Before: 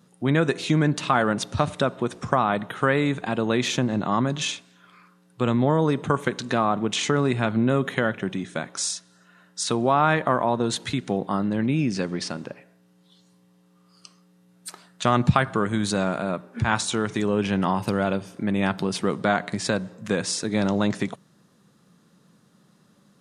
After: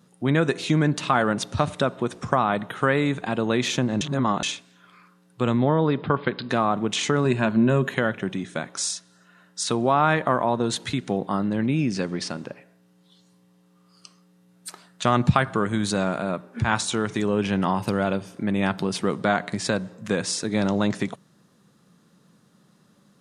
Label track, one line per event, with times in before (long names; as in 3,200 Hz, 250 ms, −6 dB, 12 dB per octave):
4.010000	4.430000	reverse
5.590000	6.500000	linear-phase brick-wall low-pass 5,100 Hz
7.240000	7.940000	EQ curve with evenly spaced ripples crests per octave 1.4, crest to trough 8 dB